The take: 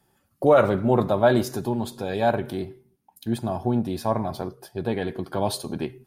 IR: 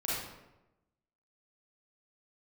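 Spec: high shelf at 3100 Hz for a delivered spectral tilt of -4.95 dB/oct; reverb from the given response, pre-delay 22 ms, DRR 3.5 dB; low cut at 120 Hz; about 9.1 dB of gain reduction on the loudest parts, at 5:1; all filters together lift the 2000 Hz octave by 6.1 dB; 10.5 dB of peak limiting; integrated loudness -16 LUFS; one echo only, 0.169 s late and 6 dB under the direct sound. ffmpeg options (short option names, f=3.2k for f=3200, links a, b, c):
-filter_complex "[0:a]highpass=120,equalizer=f=2k:t=o:g=7,highshelf=f=3.1k:g=5,acompressor=threshold=-21dB:ratio=5,alimiter=limit=-21.5dB:level=0:latency=1,aecho=1:1:169:0.501,asplit=2[a][b];[1:a]atrim=start_sample=2205,adelay=22[c];[b][c]afir=irnorm=-1:irlink=0,volume=-9.5dB[d];[a][d]amix=inputs=2:normalize=0,volume=14dB"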